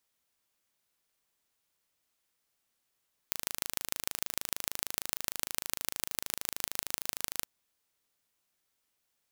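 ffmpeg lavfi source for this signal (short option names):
-f lavfi -i "aevalsrc='0.794*eq(mod(n,1664),0)*(0.5+0.5*eq(mod(n,6656),0))':d=4.14:s=44100"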